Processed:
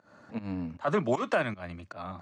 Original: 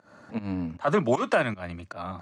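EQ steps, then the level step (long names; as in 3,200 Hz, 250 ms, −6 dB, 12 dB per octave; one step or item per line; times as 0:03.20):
low-pass filter 8,300 Hz 12 dB per octave
−4.0 dB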